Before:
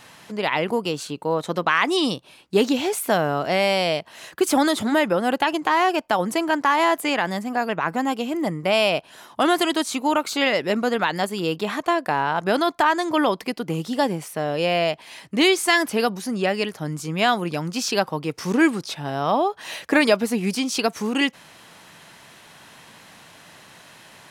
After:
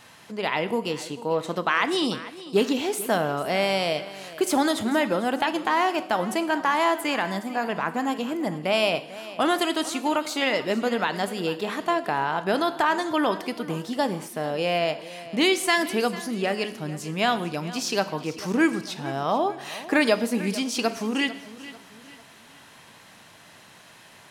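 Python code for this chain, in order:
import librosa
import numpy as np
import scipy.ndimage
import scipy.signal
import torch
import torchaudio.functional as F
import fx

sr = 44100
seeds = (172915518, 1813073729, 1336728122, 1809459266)

y = fx.echo_feedback(x, sr, ms=445, feedback_pct=40, wet_db=-16.5)
y = fx.rev_gated(y, sr, seeds[0], gate_ms=250, shape='falling', drr_db=11.5)
y = F.gain(torch.from_numpy(y), -3.5).numpy()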